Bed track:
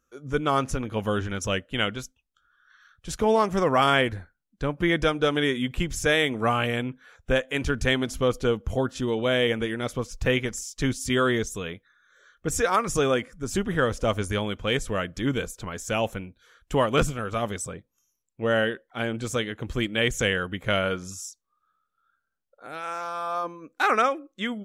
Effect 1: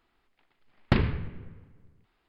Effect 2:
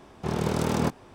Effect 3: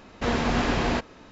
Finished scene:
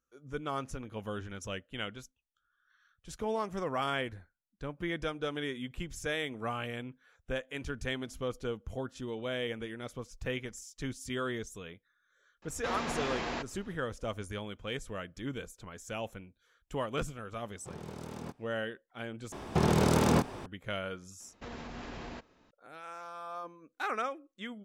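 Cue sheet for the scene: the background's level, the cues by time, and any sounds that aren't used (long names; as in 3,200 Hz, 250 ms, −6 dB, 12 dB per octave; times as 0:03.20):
bed track −12.5 dB
0:12.42: mix in 3 −8.5 dB + low-shelf EQ 240 Hz −10 dB
0:17.42: mix in 2 −17.5 dB
0:19.32: overwrite with 2 −15.5 dB + boost into a limiter +23 dB
0:21.20: mix in 3 −16.5 dB + brickwall limiter −17.5 dBFS
not used: 1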